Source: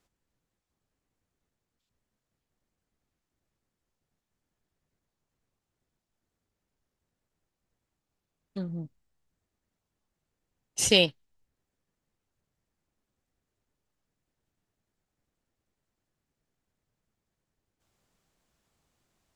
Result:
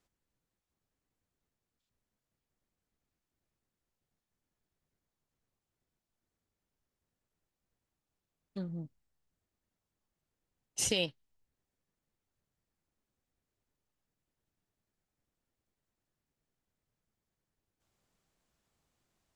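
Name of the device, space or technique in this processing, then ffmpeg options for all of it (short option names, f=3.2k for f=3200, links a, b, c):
stacked limiters: -af "alimiter=limit=-9dB:level=0:latency=1:release=300,alimiter=limit=-14.5dB:level=0:latency=1:release=111,volume=-4.5dB"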